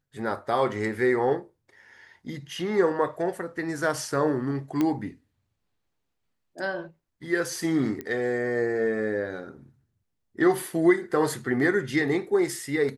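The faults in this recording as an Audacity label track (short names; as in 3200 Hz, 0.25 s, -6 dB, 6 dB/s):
4.810000	4.810000	pop -13 dBFS
8.010000	8.010000	pop -20 dBFS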